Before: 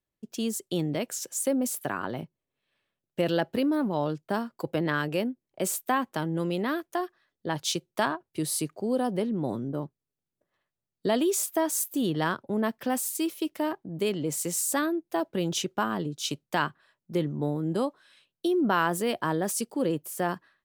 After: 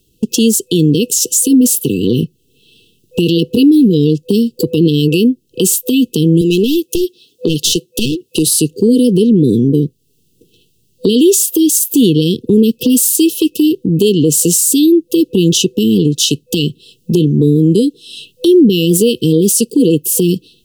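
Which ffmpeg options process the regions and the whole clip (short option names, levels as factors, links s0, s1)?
-filter_complex "[0:a]asettb=1/sr,asplit=3[s0][s1][s2];[s0]atrim=end=6.414[s3];[s1]atrim=start=6.41:end=8.47,asetpts=PTS-STARTPTS,afade=t=in:d=0.004:c=qsin,afade=t=out:st=2.056:d=0.004:c=qsin,highpass=f=340:p=1,aeval=exprs='clip(val(0),-1,0.0282)':c=same[s4];[s2]atrim=start=8.466[s5];[s3][s4]acrossfade=d=0.004:c1=hsin:c2=qsin[s6];[s6][s5]acrossfade=d=0.004:c1=qsin:c2=hsin,afftfilt=real='re*(1-between(b*sr/4096,500,2600))':imag='im*(1-between(b*sr/4096,500,2600))':win_size=4096:overlap=0.75,acompressor=threshold=0.00355:ratio=2,alimiter=level_in=47.3:limit=0.891:release=50:level=0:latency=1,volume=0.891"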